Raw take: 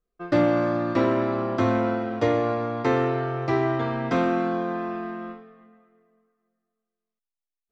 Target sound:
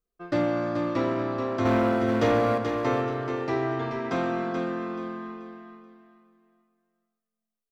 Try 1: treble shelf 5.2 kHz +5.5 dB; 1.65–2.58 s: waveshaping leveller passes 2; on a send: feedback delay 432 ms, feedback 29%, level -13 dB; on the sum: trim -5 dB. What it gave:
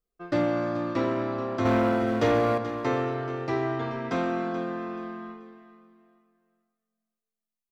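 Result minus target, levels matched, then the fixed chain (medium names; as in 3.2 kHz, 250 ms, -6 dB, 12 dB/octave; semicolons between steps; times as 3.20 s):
echo-to-direct -6.5 dB
treble shelf 5.2 kHz +5.5 dB; 1.65–2.58 s: waveshaping leveller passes 2; on a send: feedback delay 432 ms, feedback 29%, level -6.5 dB; on the sum: trim -5 dB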